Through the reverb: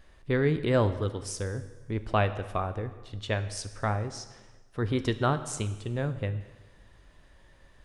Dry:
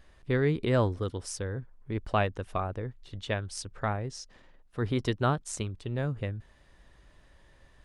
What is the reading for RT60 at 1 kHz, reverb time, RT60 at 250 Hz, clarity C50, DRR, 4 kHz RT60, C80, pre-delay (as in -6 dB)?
1.2 s, 1.2 s, 1.3 s, 13.0 dB, 10.5 dB, 1.2 s, 14.0 dB, 6 ms